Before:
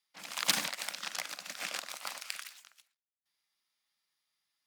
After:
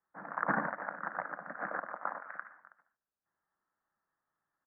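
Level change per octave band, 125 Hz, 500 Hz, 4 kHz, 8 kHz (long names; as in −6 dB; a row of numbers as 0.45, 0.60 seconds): +7.5 dB, +7.5 dB, below −40 dB, below −40 dB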